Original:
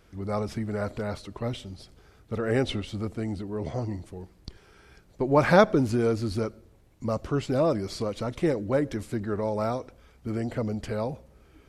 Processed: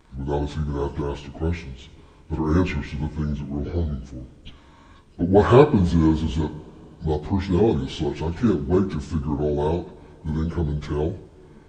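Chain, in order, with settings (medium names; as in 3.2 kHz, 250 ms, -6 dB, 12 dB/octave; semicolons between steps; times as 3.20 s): frequency-domain pitch shifter -6.5 st; two-slope reverb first 0.59 s, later 4.7 s, from -18 dB, DRR 11 dB; trim +6 dB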